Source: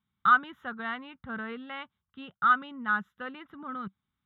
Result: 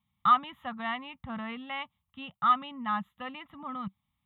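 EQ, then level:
phaser with its sweep stopped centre 1,500 Hz, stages 6
+5.5 dB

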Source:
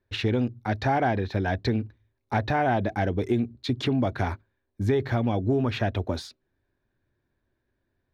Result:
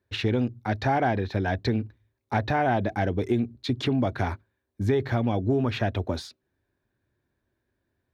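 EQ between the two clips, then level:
high-pass filter 47 Hz
0.0 dB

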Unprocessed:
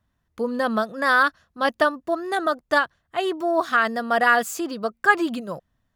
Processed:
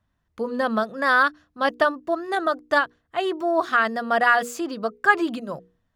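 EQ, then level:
high-shelf EQ 7,900 Hz −8.5 dB
mains-hum notches 60/120/180/240/300/360/420/480 Hz
0.0 dB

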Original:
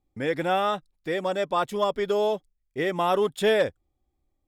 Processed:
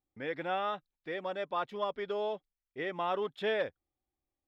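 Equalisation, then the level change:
high-frequency loss of the air 320 metres
spectral tilt +2.5 dB per octave
−7.0 dB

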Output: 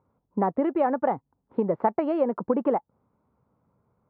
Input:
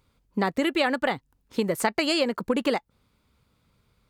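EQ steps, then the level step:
high-pass filter 110 Hz 12 dB per octave
low-pass with resonance 890 Hz, resonance Q 1.7
high-frequency loss of the air 350 metres
0.0 dB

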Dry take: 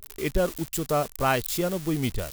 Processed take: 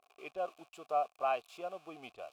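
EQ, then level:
formant filter a
low-shelf EQ 210 Hz −10.5 dB
0.0 dB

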